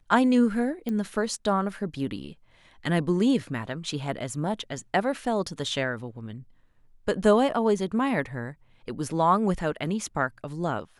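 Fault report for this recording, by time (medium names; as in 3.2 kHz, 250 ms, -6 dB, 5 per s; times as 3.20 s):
0.89 s: pop -19 dBFS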